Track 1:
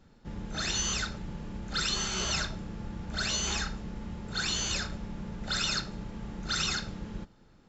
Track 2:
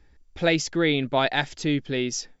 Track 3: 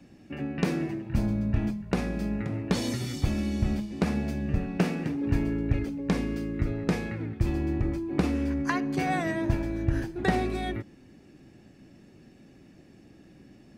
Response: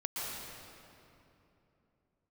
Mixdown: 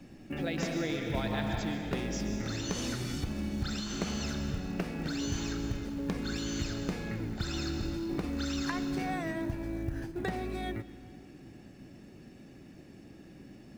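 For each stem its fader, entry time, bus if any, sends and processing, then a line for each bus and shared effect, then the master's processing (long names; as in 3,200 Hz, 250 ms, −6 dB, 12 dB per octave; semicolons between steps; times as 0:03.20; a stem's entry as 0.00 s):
−7.5 dB, 1.90 s, bus A, send −10 dB, no processing
−13.0 dB, 0.00 s, bus A, send −4.5 dB, no processing
+1.0 dB, 0.00 s, no bus, send −19 dB, downward compressor 4 to 1, threshold −35 dBFS, peak gain reduction 14.5 dB
bus A: 0.0 dB, downward compressor, threshold −42 dBFS, peak gain reduction 12.5 dB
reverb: on, RT60 3.0 s, pre-delay 110 ms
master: floating-point word with a short mantissa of 4 bits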